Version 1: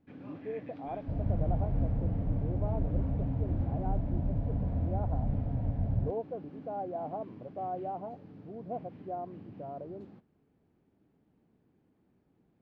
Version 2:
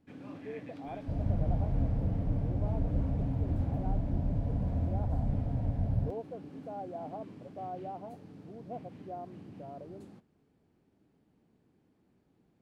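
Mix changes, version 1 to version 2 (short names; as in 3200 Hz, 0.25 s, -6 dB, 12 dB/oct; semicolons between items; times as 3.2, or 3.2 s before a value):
speech -5.0 dB; master: remove air absorption 210 m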